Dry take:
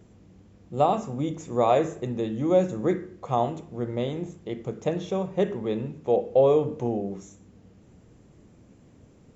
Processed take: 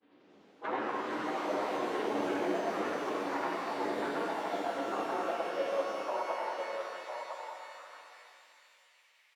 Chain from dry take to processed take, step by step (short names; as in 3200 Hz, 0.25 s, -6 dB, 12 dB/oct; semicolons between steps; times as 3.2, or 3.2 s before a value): inharmonic rescaling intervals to 126%; LPF 3100 Hz 24 dB/oct; tilt +4.5 dB/oct; compressor 3:1, threshold -39 dBFS, peak gain reduction 15 dB; grains, pitch spread up and down by 0 st; formant-preserving pitch shift -11 st; high-pass sweep 260 Hz -> 2100 Hz, 4.75–7.3; echo 1.006 s -6 dB; echoes that change speed 94 ms, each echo +4 st, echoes 3; shimmer reverb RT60 2.7 s, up +12 st, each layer -8 dB, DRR 1.5 dB; gain +2 dB